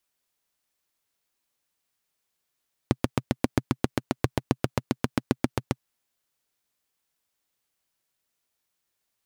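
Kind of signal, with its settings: single-cylinder engine model, steady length 2.91 s, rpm 900, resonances 130/240 Hz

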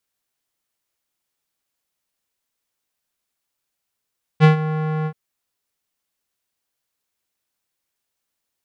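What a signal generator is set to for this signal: synth note square D#3 12 dB/oct, low-pass 1500 Hz, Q 1, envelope 1 oct, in 0.24 s, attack 40 ms, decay 0.12 s, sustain -14 dB, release 0.07 s, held 0.66 s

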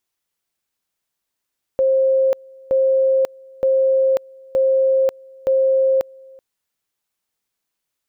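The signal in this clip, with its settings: two-level tone 531 Hz -12.5 dBFS, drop 27 dB, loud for 0.54 s, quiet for 0.38 s, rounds 5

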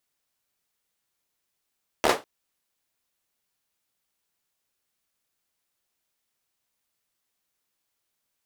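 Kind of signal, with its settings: hand clap length 0.20 s, bursts 5, apart 13 ms, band 600 Hz, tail 0.22 s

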